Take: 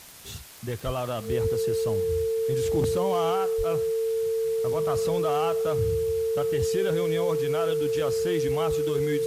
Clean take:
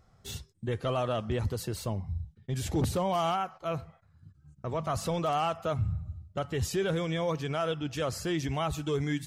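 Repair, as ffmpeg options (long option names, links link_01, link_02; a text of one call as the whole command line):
ffmpeg -i in.wav -filter_complex "[0:a]adeclick=threshold=4,bandreject=frequency=450:width=30,asplit=3[link_01][link_02][link_03];[link_01]afade=type=out:start_time=0.85:duration=0.02[link_04];[link_02]highpass=frequency=140:width=0.5412,highpass=frequency=140:width=1.3066,afade=type=in:start_time=0.85:duration=0.02,afade=type=out:start_time=0.97:duration=0.02[link_05];[link_03]afade=type=in:start_time=0.97:duration=0.02[link_06];[link_04][link_05][link_06]amix=inputs=3:normalize=0,asplit=3[link_07][link_08][link_09];[link_07]afade=type=out:start_time=3.57:duration=0.02[link_10];[link_08]highpass=frequency=140:width=0.5412,highpass=frequency=140:width=1.3066,afade=type=in:start_time=3.57:duration=0.02,afade=type=out:start_time=3.69:duration=0.02[link_11];[link_09]afade=type=in:start_time=3.69:duration=0.02[link_12];[link_10][link_11][link_12]amix=inputs=3:normalize=0,afwtdn=0.005" out.wav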